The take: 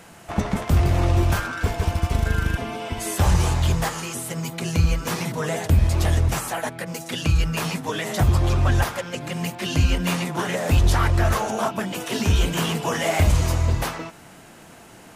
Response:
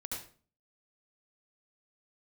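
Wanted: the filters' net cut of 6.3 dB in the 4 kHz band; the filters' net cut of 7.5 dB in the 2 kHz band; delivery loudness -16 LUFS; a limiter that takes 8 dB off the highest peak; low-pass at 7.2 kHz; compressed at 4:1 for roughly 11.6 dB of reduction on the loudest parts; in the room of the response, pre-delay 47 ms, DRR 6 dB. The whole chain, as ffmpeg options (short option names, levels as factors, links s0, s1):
-filter_complex "[0:a]lowpass=7200,equalizer=f=2000:t=o:g=-9,equalizer=f=4000:t=o:g=-4.5,acompressor=threshold=0.0398:ratio=4,alimiter=limit=0.0631:level=0:latency=1,asplit=2[s0][s1];[1:a]atrim=start_sample=2205,adelay=47[s2];[s1][s2]afir=irnorm=-1:irlink=0,volume=0.501[s3];[s0][s3]amix=inputs=2:normalize=0,volume=5.96"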